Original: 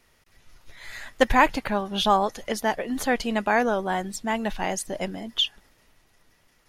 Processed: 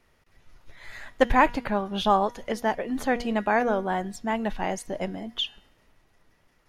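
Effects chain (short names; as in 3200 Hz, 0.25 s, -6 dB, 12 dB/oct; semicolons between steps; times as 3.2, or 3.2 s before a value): high shelf 2900 Hz -9.5 dB; de-hum 239.8 Hz, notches 30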